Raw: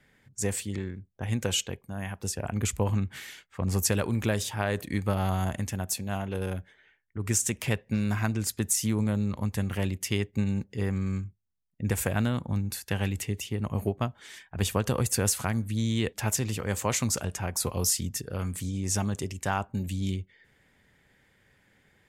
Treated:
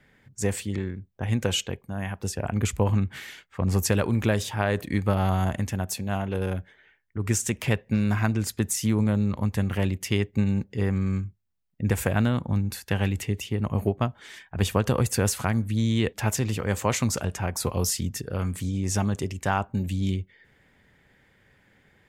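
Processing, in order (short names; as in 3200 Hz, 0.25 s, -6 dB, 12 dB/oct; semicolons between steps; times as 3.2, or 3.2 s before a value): bell 9800 Hz -6.5 dB 2 oct; gain +4 dB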